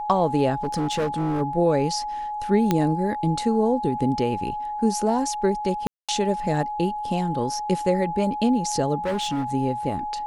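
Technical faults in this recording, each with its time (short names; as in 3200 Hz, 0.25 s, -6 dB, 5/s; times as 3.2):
tone 840 Hz -27 dBFS
0.63–1.42 clipped -20.5 dBFS
2.71 pop -7 dBFS
5.87–6.09 gap 0.216 s
8.97–9.44 clipped -21.5 dBFS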